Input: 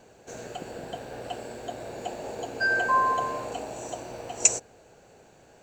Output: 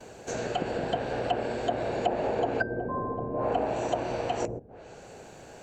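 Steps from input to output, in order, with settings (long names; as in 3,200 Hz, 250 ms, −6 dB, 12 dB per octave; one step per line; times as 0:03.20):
noise gate with hold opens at −49 dBFS
treble cut that deepens with the level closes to 320 Hz, closed at −25.5 dBFS
level +8 dB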